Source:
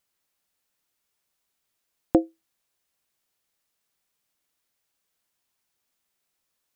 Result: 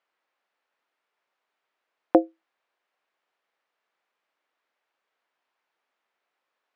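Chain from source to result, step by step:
band-pass filter 480–2,000 Hz
level +7.5 dB

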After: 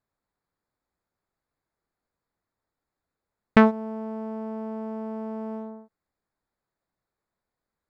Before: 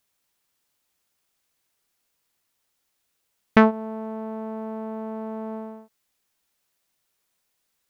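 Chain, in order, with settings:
adaptive Wiener filter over 15 samples
low-shelf EQ 130 Hz +5.5 dB
level −1.5 dB

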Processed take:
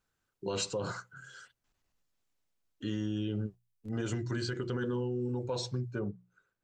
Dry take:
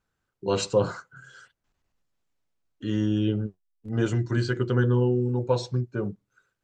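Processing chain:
mains-hum notches 60/120/180 Hz
brickwall limiter −20 dBFS, peak gain reduction 10 dB
high-shelf EQ 2,700 Hz +5.5 dB, from 0:05.99 −7.5 dB
downward compressor 2 to 1, threshold −28 dBFS, peak gain reduction 3 dB
level −3.5 dB

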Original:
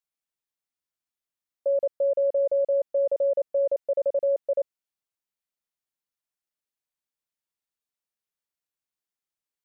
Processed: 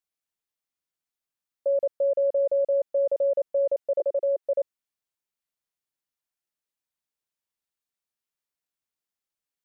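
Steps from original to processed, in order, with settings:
0:04.00–0:04.44: Chebyshev high-pass filter 380 Hz, order 4

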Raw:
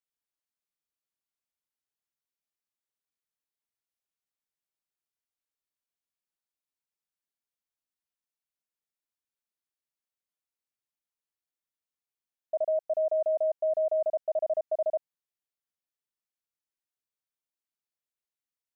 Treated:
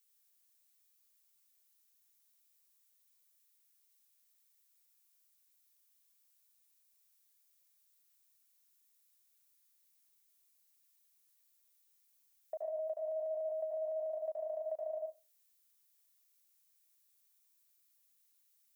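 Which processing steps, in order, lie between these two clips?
spectral tilt +5 dB per octave
downward compressor 5 to 1, threshold −42 dBFS, peak gain reduction 12 dB
on a send: convolution reverb RT60 0.25 s, pre-delay 78 ms, DRR 1 dB
on the sum: level +1 dB

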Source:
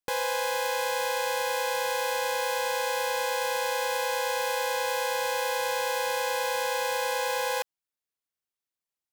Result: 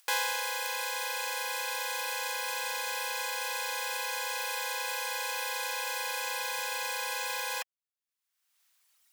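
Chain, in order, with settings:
reverb reduction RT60 1.8 s
upward compression, threshold −51 dBFS
high-pass filter 1,100 Hz 12 dB per octave
level +4.5 dB

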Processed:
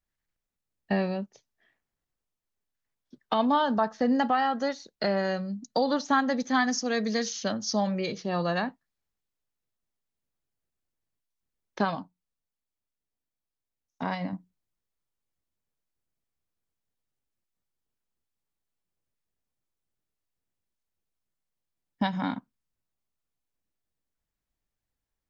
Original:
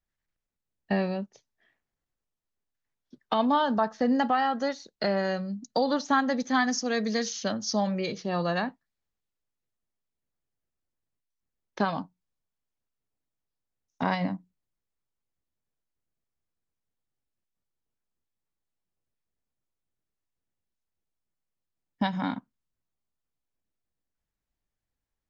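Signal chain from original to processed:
0:11.95–0:14.33: flanger 1.2 Hz, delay 2.8 ms, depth 1.7 ms, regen −72%

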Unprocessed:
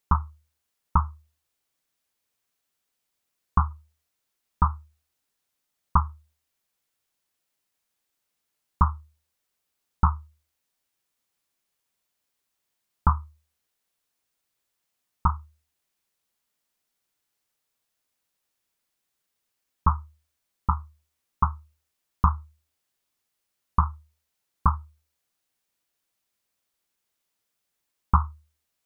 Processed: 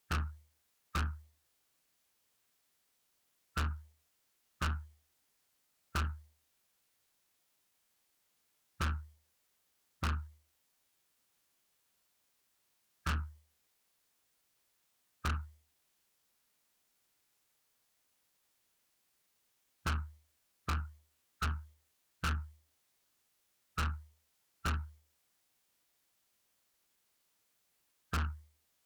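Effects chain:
formants moved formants +4 semitones
tube saturation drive 35 dB, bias 0.3
level +4 dB

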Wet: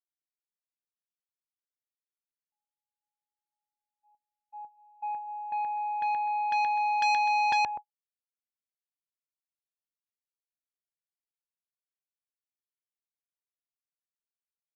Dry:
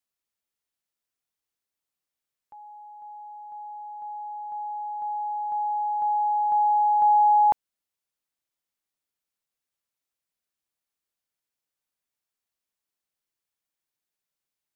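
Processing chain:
low-pass filter 1,000 Hz 6 dB per octave
on a send: repeating echo 126 ms, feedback 22%, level −3 dB
on the sum: noise gate −39 dBFS, range −53 dB
high-pass filter 72 Hz 6 dB per octave
saturating transformer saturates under 1,900 Hz
level +4.5 dB

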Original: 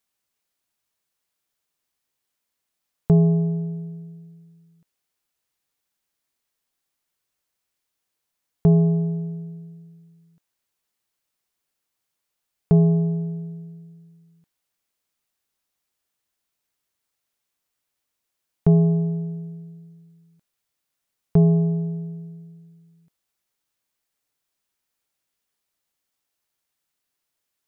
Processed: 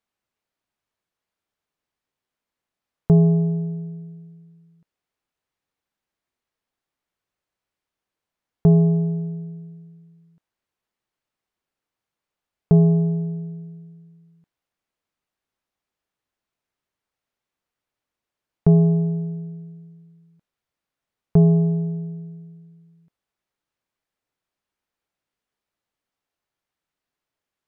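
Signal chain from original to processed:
low-pass filter 1,800 Hz 6 dB per octave
level +1.5 dB

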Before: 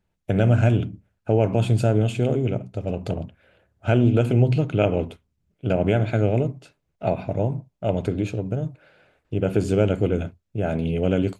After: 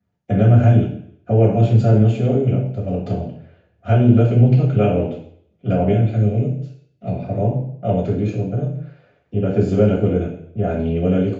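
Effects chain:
0:05.91–0:07.23: parametric band 1,000 Hz −11.5 dB 2.5 octaves
convolution reverb RT60 0.65 s, pre-delay 3 ms, DRR −8 dB
downsampling to 16,000 Hz
level −14.5 dB

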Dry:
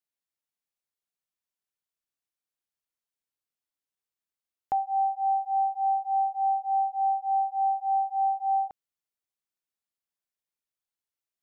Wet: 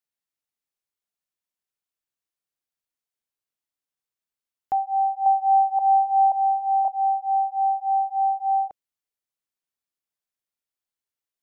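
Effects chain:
0:04.73–0:06.88: delay that plays each chunk backwards 530 ms, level −1 dB
dynamic equaliser 590 Hz, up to +7 dB, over −38 dBFS, Q 1.7

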